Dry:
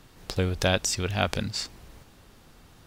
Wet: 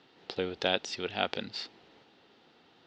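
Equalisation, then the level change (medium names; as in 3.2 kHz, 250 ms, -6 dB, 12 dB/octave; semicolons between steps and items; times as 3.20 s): cabinet simulation 350–4000 Hz, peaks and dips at 600 Hz -6 dB, 1.1 kHz -9 dB, 1.6 kHz -5 dB, 2.3 kHz -5 dB; 0.0 dB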